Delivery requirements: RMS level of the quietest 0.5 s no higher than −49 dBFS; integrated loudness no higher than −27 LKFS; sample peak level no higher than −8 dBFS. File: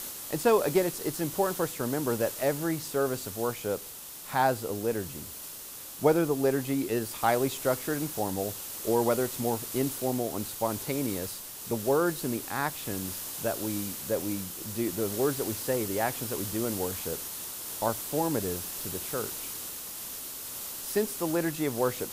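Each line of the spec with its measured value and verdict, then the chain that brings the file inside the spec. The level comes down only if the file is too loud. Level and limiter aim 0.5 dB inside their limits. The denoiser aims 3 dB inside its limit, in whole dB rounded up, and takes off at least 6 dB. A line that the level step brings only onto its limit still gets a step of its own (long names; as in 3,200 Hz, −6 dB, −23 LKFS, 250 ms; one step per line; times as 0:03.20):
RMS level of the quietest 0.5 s −43 dBFS: out of spec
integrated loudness −30.0 LKFS: in spec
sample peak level −10.0 dBFS: in spec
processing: broadband denoise 9 dB, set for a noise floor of −43 dBFS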